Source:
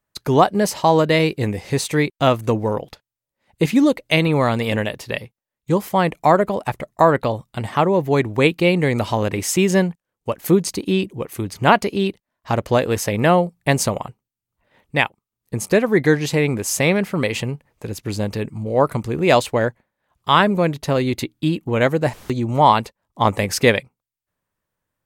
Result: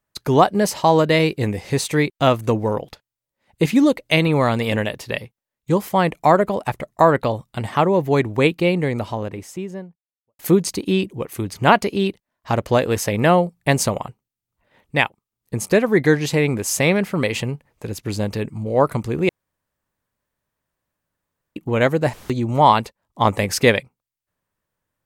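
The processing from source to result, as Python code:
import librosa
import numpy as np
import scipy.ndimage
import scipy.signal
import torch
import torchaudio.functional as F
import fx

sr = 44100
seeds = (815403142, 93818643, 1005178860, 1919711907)

y = fx.studio_fade_out(x, sr, start_s=8.07, length_s=2.32)
y = fx.edit(y, sr, fx.room_tone_fill(start_s=19.29, length_s=2.27), tone=tone)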